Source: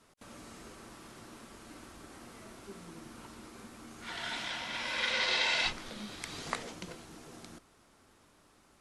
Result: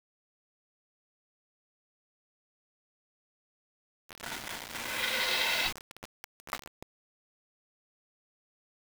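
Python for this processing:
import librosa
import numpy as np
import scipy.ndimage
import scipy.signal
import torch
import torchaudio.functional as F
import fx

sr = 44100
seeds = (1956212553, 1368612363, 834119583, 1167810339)

y = fx.env_lowpass(x, sr, base_hz=650.0, full_db=-27.5)
y = fx.quant_dither(y, sr, seeds[0], bits=6, dither='none')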